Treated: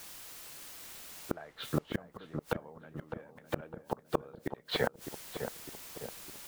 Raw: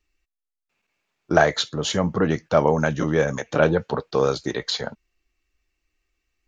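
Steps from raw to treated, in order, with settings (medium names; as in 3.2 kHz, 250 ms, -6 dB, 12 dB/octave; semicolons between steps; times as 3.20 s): low-pass 3 kHz 24 dB/octave; bass shelf 200 Hz -5 dB; added noise white -50 dBFS; inverted gate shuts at -17 dBFS, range -33 dB; filtered feedback delay 607 ms, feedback 57%, low-pass 1.1 kHz, level -6.5 dB; trim +1.5 dB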